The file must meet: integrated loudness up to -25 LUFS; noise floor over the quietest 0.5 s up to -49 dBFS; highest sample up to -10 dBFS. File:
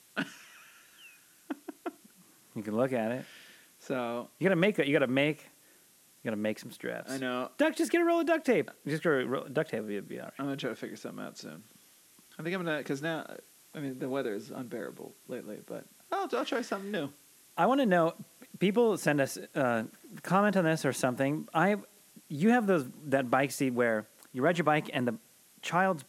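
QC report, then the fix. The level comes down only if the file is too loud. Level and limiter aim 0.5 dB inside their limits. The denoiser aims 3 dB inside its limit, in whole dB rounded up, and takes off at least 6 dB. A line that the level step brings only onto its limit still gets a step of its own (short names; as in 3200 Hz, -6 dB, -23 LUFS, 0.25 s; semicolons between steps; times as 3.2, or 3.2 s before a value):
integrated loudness -31.0 LUFS: OK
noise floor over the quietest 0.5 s -62 dBFS: OK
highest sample -12.0 dBFS: OK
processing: none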